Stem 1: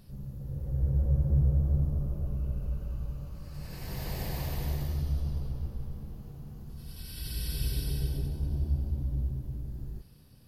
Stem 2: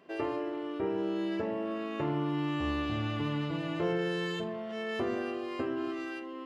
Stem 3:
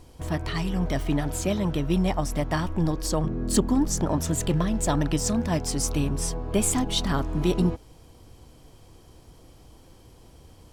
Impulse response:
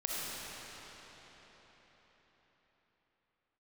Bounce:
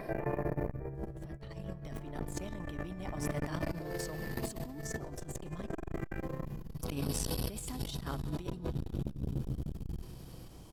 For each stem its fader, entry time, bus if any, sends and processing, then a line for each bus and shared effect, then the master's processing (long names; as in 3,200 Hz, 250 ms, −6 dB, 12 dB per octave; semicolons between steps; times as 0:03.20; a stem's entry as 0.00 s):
−2.5 dB, 0.00 s, send −20.5 dB, high-shelf EQ 6,500 Hz −5 dB; comb filter 6.1 ms, depth 87%
+2.5 dB, 0.00 s, send −20 dB, upward compression, threshold −36 dBFS; Chebyshev low-pass with heavy ripple 2,500 Hz, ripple 9 dB
−7.0 dB, 0.95 s, muted 0:05.67–0:06.82, send −19 dB, high-pass filter 68 Hz 12 dB per octave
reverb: on, RT60 4.8 s, pre-delay 20 ms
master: high-shelf EQ 11,000 Hz +4.5 dB; compressor whose output falls as the input rises −33 dBFS, ratio −0.5; saturating transformer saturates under 320 Hz